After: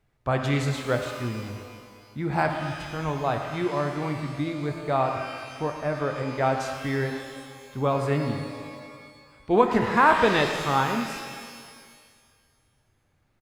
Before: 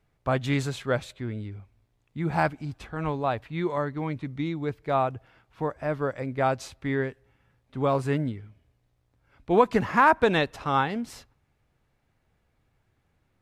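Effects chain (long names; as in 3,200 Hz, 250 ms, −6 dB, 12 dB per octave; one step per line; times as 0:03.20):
far-end echo of a speakerphone 110 ms, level −12 dB
reverb with rising layers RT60 1.9 s, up +12 semitones, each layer −8 dB, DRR 5 dB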